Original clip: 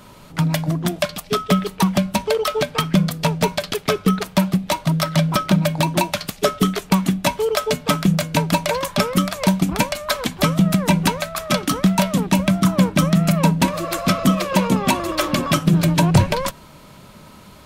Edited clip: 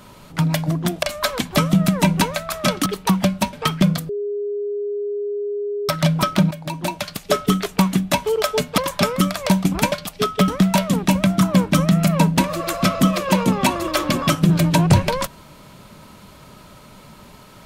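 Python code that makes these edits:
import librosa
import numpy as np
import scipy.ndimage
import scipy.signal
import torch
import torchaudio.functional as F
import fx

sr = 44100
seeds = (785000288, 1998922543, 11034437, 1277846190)

y = fx.edit(x, sr, fx.swap(start_s=1.03, length_s=0.56, other_s=9.89, other_length_s=1.83),
    fx.cut(start_s=2.26, length_s=0.4),
    fx.bleep(start_s=3.22, length_s=1.8, hz=410.0, db=-21.5),
    fx.fade_in_from(start_s=5.64, length_s=0.88, floor_db=-14.5),
    fx.cut(start_s=7.91, length_s=0.84), tone=tone)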